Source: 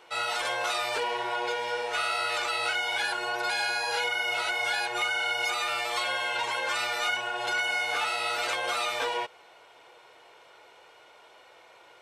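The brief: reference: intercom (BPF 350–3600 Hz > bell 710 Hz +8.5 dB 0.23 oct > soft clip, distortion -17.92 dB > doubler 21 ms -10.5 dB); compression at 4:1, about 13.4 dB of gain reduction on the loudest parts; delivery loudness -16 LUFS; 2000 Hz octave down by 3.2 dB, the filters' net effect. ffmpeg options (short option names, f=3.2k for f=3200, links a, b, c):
-filter_complex "[0:a]equalizer=f=2k:t=o:g=-4,acompressor=threshold=-44dB:ratio=4,highpass=350,lowpass=3.6k,equalizer=f=710:t=o:w=0.23:g=8.5,asoftclip=threshold=-37dB,asplit=2[a][b];[b]adelay=21,volume=-10.5dB[c];[a][c]amix=inputs=2:normalize=0,volume=28dB"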